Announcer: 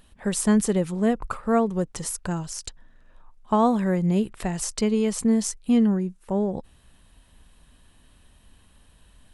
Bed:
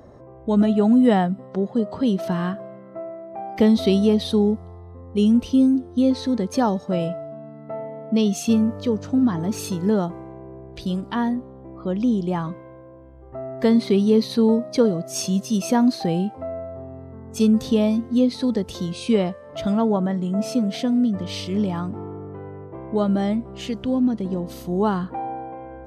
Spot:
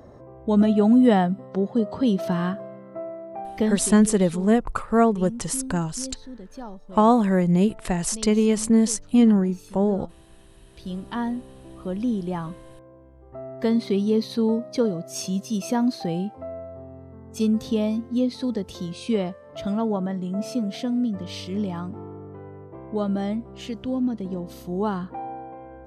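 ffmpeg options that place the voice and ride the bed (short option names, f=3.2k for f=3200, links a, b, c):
-filter_complex "[0:a]adelay=3450,volume=3dB[a];[1:a]volume=13dB,afade=t=out:st=3.31:d=0.62:silence=0.133352,afade=t=in:st=10.63:d=0.44:silence=0.211349[b];[a][b]amix=inputs=2:normalize=0"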